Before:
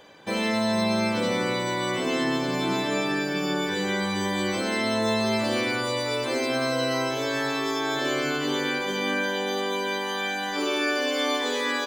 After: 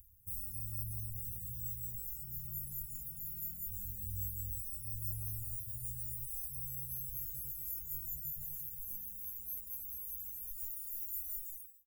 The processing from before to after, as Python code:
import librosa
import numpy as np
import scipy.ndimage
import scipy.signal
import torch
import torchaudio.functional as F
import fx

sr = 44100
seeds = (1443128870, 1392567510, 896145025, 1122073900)

y = fx.fade_out_tail(x, sr, length_s=0.51)
y = fx.dereverb_blind(y, sr, rt60_s=0.63)
y = scipy.signal.sosfilt(scipy.signal.cheby2(4, 70, [260.0, 4100.0], 'bandstop', fs=sr, output='sos'), y)
y = y * 10.0 ** (18.0 / 20.0)